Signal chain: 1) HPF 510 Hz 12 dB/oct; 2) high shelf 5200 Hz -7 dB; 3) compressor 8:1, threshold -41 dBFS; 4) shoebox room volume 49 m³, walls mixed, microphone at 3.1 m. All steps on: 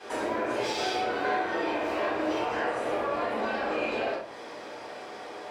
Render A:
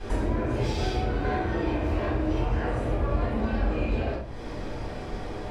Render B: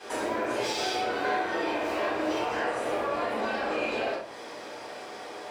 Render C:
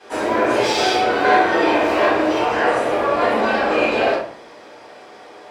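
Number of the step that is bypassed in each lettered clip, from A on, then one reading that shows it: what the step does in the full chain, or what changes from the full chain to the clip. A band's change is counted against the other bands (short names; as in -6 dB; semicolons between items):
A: 1, 125 Hz band +26.0 dB; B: 2, 8 kHz band +4.0 dB; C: 3, mean gain reduction 9.0 dB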